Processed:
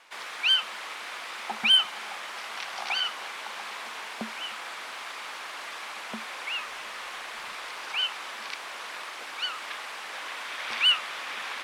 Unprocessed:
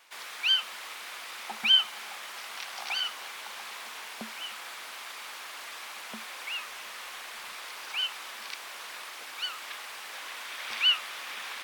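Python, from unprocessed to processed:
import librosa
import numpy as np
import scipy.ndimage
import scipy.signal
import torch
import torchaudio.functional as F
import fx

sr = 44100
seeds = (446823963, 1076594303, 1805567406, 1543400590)

p1 = scipy.signal.sosfilt(scipy.signal.butter(2, 11000.0, 'lowpass', fs=sr, output='sos'), x)
p2 = fx.high_shelf(p1, sr, hz=3200.0, db=-7.5)
p3 = np.clip(p2, -10.0 ** (-24.0 / 20.0), 10.0 ** (-24.0 / 20.0))
p4 = p2 + (p3 * 10.0 ** (-6.0 / 20.0))
y = p4 * 10.0 ** (2.5 / 20.0)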